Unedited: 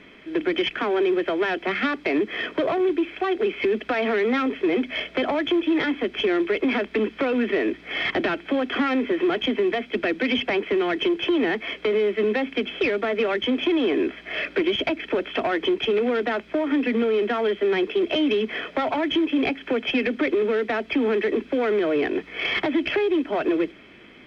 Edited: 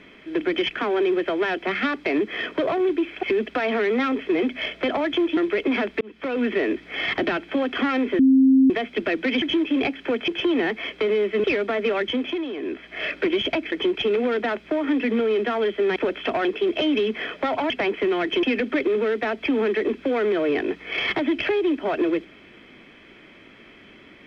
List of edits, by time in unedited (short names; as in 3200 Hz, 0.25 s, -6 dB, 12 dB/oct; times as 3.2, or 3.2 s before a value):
3.23–3.57 cut
5.71–6.34 cut
6.98–7.41 fade in
9.16–9.67 bleep 265 Hz -11.5 dBFS
10.39–11.12 swap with 19.04–19.9
12.28–12.78 cut
13.38–14.37 dip -9.5 dB, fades 0.46 s
15.06–15.55 move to 17.79